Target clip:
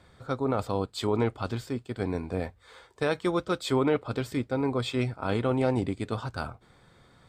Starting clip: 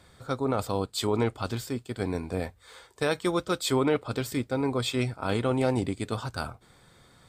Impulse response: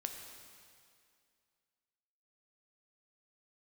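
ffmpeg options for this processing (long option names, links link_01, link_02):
-af "lowpass=frequency=3100:poles=1"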